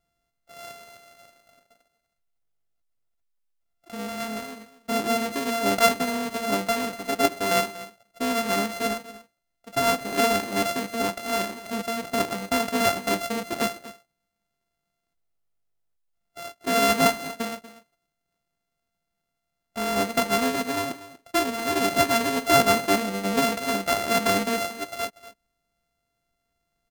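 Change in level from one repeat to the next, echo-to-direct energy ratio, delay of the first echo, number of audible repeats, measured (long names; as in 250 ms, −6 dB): repeats not evenly spaced, −16.5 dB, 239 ms, 1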